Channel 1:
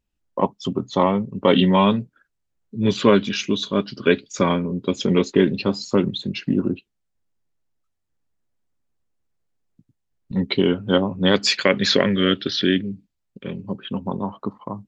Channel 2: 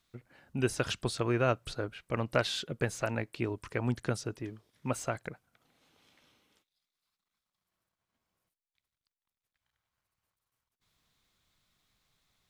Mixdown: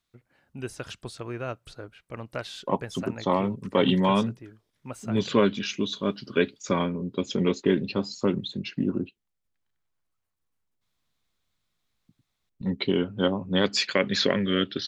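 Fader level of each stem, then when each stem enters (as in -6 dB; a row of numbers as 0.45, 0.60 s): -6.0, -5.5 dB; 2.30, 0.00 s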